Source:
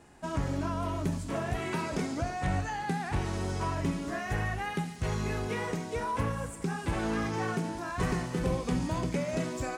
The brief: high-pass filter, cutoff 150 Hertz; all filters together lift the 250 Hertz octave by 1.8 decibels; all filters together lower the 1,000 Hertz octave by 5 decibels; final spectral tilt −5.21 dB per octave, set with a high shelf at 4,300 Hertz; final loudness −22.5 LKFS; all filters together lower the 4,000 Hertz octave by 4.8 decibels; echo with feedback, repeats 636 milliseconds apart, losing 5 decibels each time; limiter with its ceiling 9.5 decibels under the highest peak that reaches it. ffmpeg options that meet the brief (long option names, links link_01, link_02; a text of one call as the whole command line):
ffmpeg -i in.wav -af "highpass=150,equalizer=frequency=250:width_type=o:gain=4,equalizer=frequency=1000:width_type=o:gain=-6.5,equalizer=frequency=4000:width_type=o:gain=-8.5,highshelf=frequency=4300:gain=3.5,alimiter=level_in=3dB:limit=-24dB:level=0:latency=1,volume=-3dB,aecho=1:1:636|1272|1908|2544|3180|3816|4452:0.562|0.315|0.176|0.0988|0.0553|0.031|0.0173,volume=12.5dB" out.wav